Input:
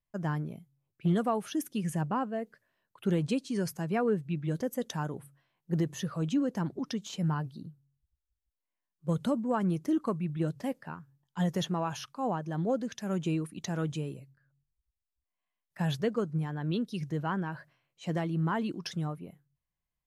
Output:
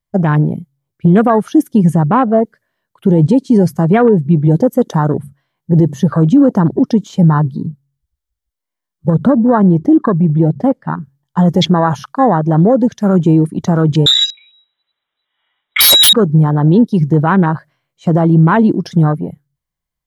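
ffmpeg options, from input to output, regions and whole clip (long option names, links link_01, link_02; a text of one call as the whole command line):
ffmpeg -i in.wav -filter_complex "[0:a]asettb=1/sr,asplit=3[link_01][link_02][link_03];[link_01]atrim=end=9.104[link_04];[link_02]atrim=start=9.1:end=10.97,asetpts=PTS-STARTPTS,afade=type=in:duration=0.004:curve=qsin,afade=type=out:start_time=1.866:duration=0.004:curve=qsin,lowpass=frequency=2600:poles=1,acompressor=threshold=-31dB:ratio=2:attack=3.2:release=140:knee=1:detection=peak[link_05];[link_03]atrim=start=10.966[link_06];[link_04][link_05]acrossfade=duration=0.004:curve1=hsin:curve2=qsin[link_07];[link_07][link_06]acrossfade=duration=0.004:curve1=qsin:curve2=hsin,asettb=1/sr,asplit=3[link_08][link_09][link_10];[link_08]atrim=end=14.064[link_11];[link_09]atrim=start=14.06:end=16.13,asetpts=PTS-STARTPTS,afade=type=in:duration=0.004:curve=qsin,afade=type=out:start_time=2.066:duration=0.004:curve=qsin,highpass=130,lowpass=frequency=3400:width_type=q:width=0.5098,lowpass=frequency=3400:width_type=q:width=0.6013,lowpass=frequency=3400:width_type=q:width=0.9,lowpass=frequency=3400:width_type=q:width=2.563,afreqshift=-4000,aeval=exprs='0.126*sin(PI/2*5.62*val(0)/0.126)':channel_layout=same[link_12];[link_10]atrim=start=16.126[link_13];[link_11][link_12]acrossfade=duration=0.004:curve1=hsin:curve2=qsin[link_14];[link_14][link_13]acrossfade=duration=0.004:curve1=qsin:curve2=hsin,bandreject=frequency=2600:width=8.8,afwtdn=0.01,alimiter=level_in=24.5dB:limit=-1dB:release=50:level=0:latency=1,volume=-1dB" out.wav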